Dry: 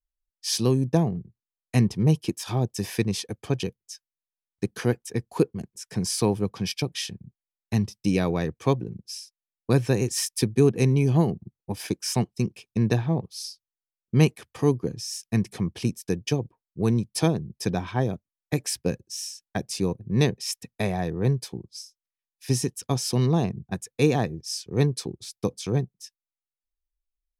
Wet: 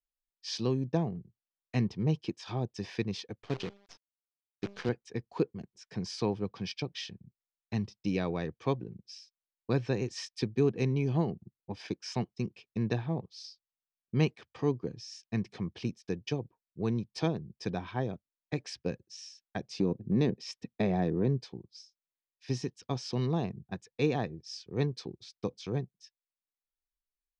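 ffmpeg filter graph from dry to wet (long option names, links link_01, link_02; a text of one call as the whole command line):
ffmpeg -i in.wav -filter_complex "[0:a]asettb=1/sr,asplit=3[link_01][link_02][link_03];[link_01]atrim=end=3.424[link_04];[link_02]atrim=start=3.42:end=4.89,asetpts=PTS-STARTPTS,afade=type=in:duration=0.004:curve=qsin,afade=type=out:start_time=1.466:duration=0.004:curve=qsin,highpass=89,bandreject=frequency=200.2:width_type=h:width=4,bandreject=frequency=400.4:width_type=h:width=4,bandreject=frequency=600.6:width_type=h:width=4,bandreject=frequency=800.8:width_type=h:width=4,bandreject=frequency=1001:width_type=h:width=4,bandreject=frequency=1201.2:width_type=h:width=4,bandreject=frequency=1401.4:width_type=h:width=4,bandreject=frequency=1601.6:width_type=h:width=4,bandreject=frequency=1801.8:width_type=h:width=4,bandreject=frequency=2002:width_type=h:width=4,bandreject=frequency=2202.2:width_type=h:width=4,bandreject=frequency=2402.4:width_type=h:width=4,bandreject=frequency=2602.6:width_type=h:width=4,bandreject=frequency=2802.8:width_type=h:width=4,bandreject=frequency=3003:width_type=h:width=4,bandreject=frequency=3203.2:width_type=h:width=4,bandreject=frequency=3403.4:width_type=h:width=4,acrusher=bits=6:dc=4:mix=0:aa=0.000001[link_05];[link_03]atrim=start=4.886[link_06];[link_04][link_05]acrossfade=duration=0.004:curve1=hsin:curve2=qsin[link_07];[link_07][link_06]acrossfade=duration=0.004:curve1=qsin:curve2=hsin,asettb=1/sr,asplit=3[link_08][link_09][link_10];[link_08]atrim=end=19.794[link_11];[link_09]atrim=start=19.79:end=21.42,asetpts=PTS-STARTPTS,afade=type=in:duration=0.004:curve=qsin,afade=type=out:start_time=1.626:duration=0.004:curve=qsin,equalizer=frequency=260:width=0.63:gain=11,acompressor=threshold=-15dB:ratio=3:attack=3.2:release=140:knee=1:detection=peak[link_12];[link_10]atrim=start=21.416[link_13];[link_11][link_12]acrossfade=duration=0.004:curve1=hsin:curve2=qsin[link_14];[link_14][link_13]acrossfade=duration=0.004:curve1=qsin:curve2=hsin,lowpass=frequency=5100:width=0.5412,lowpass=frequency=5100:width=1.3066,lowshelf=frequency=120:gain=-5,volume=-7dB" out.wav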